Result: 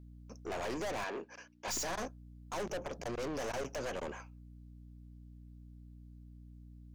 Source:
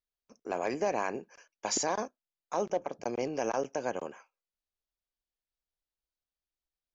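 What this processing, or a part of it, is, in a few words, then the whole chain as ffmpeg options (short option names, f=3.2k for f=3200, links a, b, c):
valve amplifier with mains hum: -filter_complex "[0:a]aeval=exprs='(tanh(126*val(0)+0.35)-tanh(0.35))/126':c=same,aeval=exprs='val(0)+0.00126*(sin(2*PI*60*n/s)+sin(2*PI*2*60*n/s)/2+sin(2*PI*3*60*n/s)/3+sin(2*PI*4*60*n/s)/4+sin(2*PI*5*60*n/s)/5)':c=same,asettb=1/sr,asplit=3[a][b][c];[a]atrim=end=1.044[d];[b]atrim=start=1.04:end=1.68,asetpts=PTS-STARTPTS,afade=t=in:d=0.004:c=qsin,afade=t=out:st=0.636:d=0.004:c=qsin,acrossover=split=230 6100:gain=0.141 1 0.2[e][f][g];[e][f][g]amix=inputs=3:normalize=0[h];[c]atrim=start=1.676[i];[d][h]acrossfade=d=0.004:c1=hsin:c2=qsin[j];[j][i]acrossfade=d=0.004:c1=qsin:c2=hsin,volume=6.5dB"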